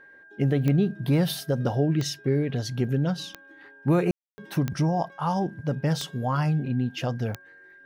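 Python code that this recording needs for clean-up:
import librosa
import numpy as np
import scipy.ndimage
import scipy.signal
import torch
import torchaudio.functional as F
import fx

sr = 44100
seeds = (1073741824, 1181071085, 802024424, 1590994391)

y = fx.fix_declick_ar(x, sr, threshold=10.0)
y = fx.notch(y, sr, hz=1600.0, q=30.0)
y = fx.fix_ambience(y, sr, seeds[0], print_start_s=7.34, print_end_s=7.84, start_s=4.11, end_s=4.38)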